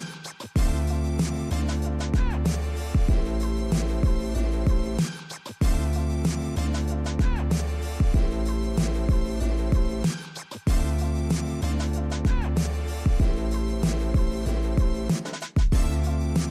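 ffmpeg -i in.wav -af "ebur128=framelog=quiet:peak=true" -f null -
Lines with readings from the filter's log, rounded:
Integrated loudness:
  I:         -26.0 LUFS
  Threshold: -36.1 LUFS
Loudness range:
  LRA:         1.0 LU
  Threshold: -46.1 LUFS
  LRA low:   -26.6 LUFS
  LRA high:  -25.6 LUFS
True peak:
  Peak:      -12.9 dBFS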